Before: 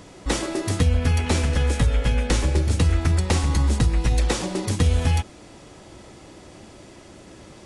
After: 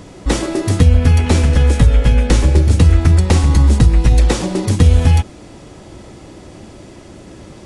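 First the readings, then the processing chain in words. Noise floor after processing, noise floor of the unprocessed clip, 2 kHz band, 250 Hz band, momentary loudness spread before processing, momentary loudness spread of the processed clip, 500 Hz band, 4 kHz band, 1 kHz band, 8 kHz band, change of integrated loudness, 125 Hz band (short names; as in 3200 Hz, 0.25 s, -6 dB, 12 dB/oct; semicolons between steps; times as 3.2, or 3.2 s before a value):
-38 dBFS, -46 dBFS, +4.5 dB, +9.0 dB, 5 LU, 7 LU, +7.0 dB, +4.0 dB, +5.5 dB, +4.0 dB, +9.0 dB, +10.0 dB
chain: low shelf 490 Hz +6 dB; gain +4 dB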